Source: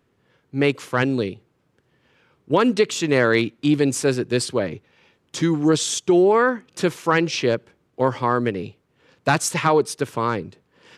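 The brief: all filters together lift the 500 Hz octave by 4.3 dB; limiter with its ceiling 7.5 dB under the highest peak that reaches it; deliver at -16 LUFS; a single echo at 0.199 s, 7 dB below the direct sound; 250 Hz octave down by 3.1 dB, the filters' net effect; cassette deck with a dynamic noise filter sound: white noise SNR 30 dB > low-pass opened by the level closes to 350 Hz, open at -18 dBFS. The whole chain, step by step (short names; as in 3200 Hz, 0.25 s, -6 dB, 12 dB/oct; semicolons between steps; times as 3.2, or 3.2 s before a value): bell 250 Hz -9 dB; bell 500 Hz +8 dB; limiter -10 dBFS; echo 0.199 s -7 dB; white noise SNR 30 dB; low-pass opened by the level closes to 350 Hz, open at -18 dBFS; gain +5.5 dB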